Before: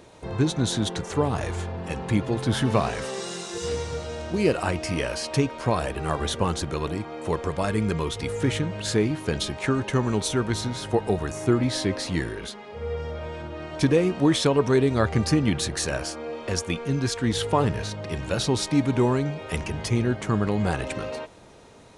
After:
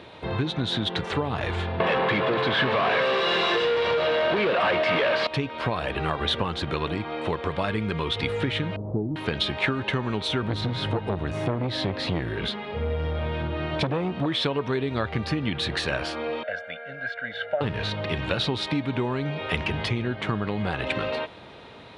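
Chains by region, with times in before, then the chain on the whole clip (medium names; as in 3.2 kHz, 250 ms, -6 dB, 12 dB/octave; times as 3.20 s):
1.80–5.27 s: comb 1.8 ms, depth 43% + overdrive pedal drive 35 dB, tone 1.3 kHz, clips at -6 dBFS + band-pass 120–7200 Hz
8.76–9.16 s: comb filter that takes the minimum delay 0.31 ms + Bessel low-pass 510 Hz, order 8 + short-mantissa float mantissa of 8-bit
10.42–14.26 s: peaking EQ 110 Hz +8.5 dB 2.8 oct + transformer saturation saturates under 630 Hz
16.43–17.61 s: two resonant band-passes 1 kHz, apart 1.4 oct + comb 1.4 ms, depth 87%
whole clip: high-pass 62 Hz; compression, threshold -27 dBFS; FFT filter 440 Hz 0 dB, 3.7 kHz +7 dB, 6.4 kHz -15 dB; trim +3.5 dB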